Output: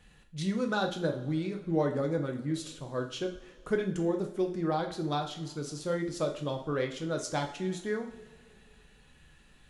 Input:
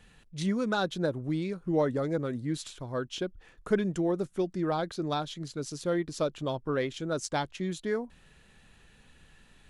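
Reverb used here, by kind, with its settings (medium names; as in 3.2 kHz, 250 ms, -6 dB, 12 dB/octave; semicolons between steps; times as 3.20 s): two-slope reverb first 0.46 s, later 2.3 s, from -18 dB, DRR 3 dB; trim -3 dB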